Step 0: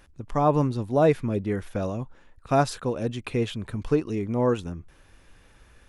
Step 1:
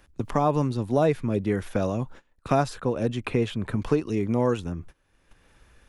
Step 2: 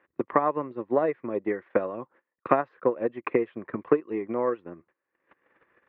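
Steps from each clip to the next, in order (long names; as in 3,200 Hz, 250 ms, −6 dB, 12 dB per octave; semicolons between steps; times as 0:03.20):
noise gate −45 dBFS, range −23 dB; multiband upward and downward compressor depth 70%
transient designer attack +10 dB, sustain −8 dB; loudspeaker in its box 270–2,400 Hz, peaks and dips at 350 Hz +7 dB, 520 Hz +6 dB, 1,100 Hz +8 dB, 1,900 Hz +9 dB; level −8.5 dB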